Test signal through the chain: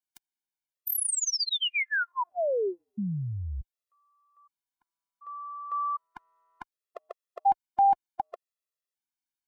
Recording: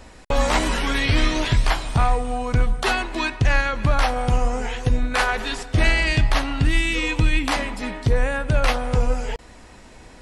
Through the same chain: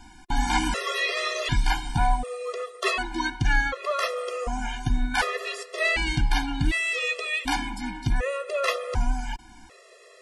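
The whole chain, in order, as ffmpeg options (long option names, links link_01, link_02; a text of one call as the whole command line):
ffmpeg -i in.wav -af "equalizer=frequency=83:width=0.54:gain=-7.5,afftfilt=real='re*gt(sin(2*PI*0.67*pts/sr)*(1-2*mod(floor(b*sr/1024/350),2)),0)':imag='im*gt(sin(2*PI*0.67*pts/sr)*(1-2*mod(floor(b*sr/1024/350),2)),0)':win_size=1024:overlap=0.75" out.wav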